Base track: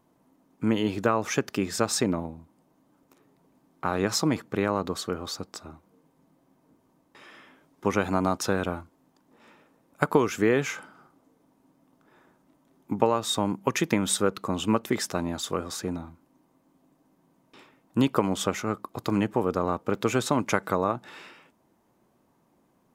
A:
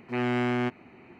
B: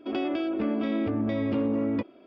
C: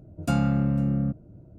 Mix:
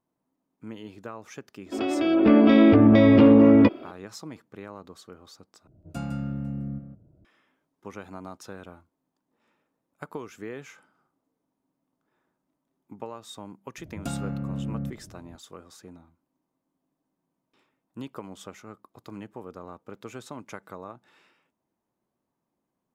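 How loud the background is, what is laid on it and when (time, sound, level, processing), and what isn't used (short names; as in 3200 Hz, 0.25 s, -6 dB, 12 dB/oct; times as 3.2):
base track -15.5 dB
1.66 add B + AGC gain up to 12.5 dB
5.67 replace with C -10 dB + echo 0.158 s -8 dB
13.78 add C -1.5 dB + compressor 5:1, threshold -26 dBFS
not used: A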